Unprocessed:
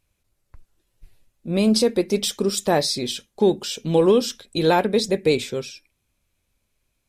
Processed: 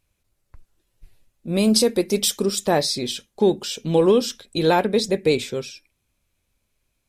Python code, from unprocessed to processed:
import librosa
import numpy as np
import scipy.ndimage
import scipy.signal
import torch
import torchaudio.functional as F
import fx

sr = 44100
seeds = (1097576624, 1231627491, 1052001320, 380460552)

y = fx.high_shelf(x, sr, hz=7200.0, db=10.0, at=(1.48, 2.46))